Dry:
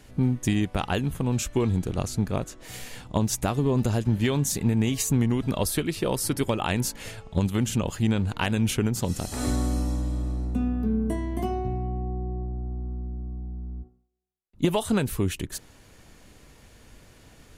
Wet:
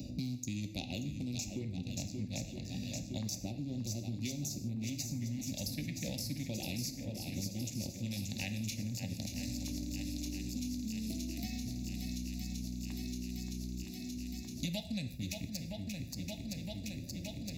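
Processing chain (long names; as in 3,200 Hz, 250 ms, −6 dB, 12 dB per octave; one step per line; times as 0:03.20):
adaptive Wiener filter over 41 samples
Chebyshev band-stop filter 370–3,400 Hz, order 2
auto-filter notch square 0.31 Hz 370–1,700 Hz
high-pass filter 52 Hz 24 dB per octave
phaser with its sweep stopped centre 2,100 Hz, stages 8
reversed playback
downward compressor, threshold −34 dBFS, peak gain reduction 12.5 dB
reversed playback
bass and treble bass −13 dB, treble 0 dB
on a send: feedback echo with a long and a short gap by turns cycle 965 ms, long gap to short 1.5 to 1, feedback 53%, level −10 dB
on the sum: reverb whose tail is shaped and stops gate 180 ms falling, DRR 7 dB
multiband upward and downward compressor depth 100%
level +6 dB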